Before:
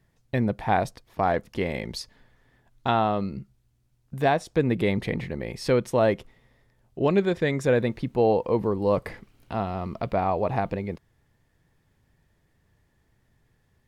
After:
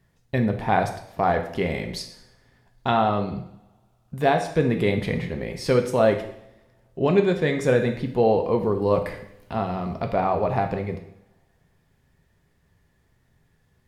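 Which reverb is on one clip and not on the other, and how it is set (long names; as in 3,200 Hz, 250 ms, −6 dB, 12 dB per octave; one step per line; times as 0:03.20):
coupled-rooms reverb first 0.68 s, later 2.2 s, from −27 dB, DRR 4.5 dB
level +1 dB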